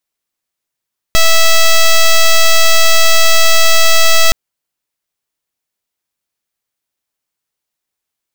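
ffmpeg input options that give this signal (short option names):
-f lavfi -i "aevalsrc='0.501*(2*lt(mod(655*t,1),0.06)-1)':d=3.17:s=44100"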